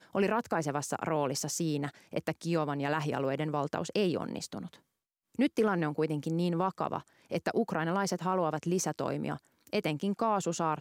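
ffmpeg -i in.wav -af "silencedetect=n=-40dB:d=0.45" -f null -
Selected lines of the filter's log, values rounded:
silence_start: 4.74
silence_end: 5.35 | silence_duration: 0.61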